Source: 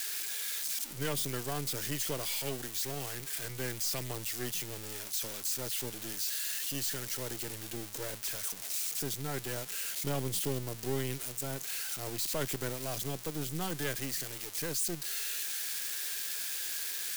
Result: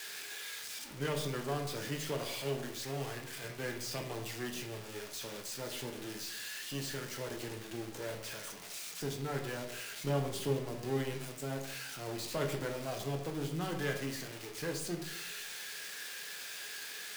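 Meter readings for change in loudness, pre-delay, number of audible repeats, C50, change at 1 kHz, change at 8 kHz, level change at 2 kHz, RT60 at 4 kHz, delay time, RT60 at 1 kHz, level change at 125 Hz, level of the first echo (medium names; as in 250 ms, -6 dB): -4.5 dB, 7 ms, no echo, 8.0 dB, +1.0 dB, -9.0 dB, 0.0 dB, 0.45 s, no echo, 0.70 s, 0.0 dB, no echo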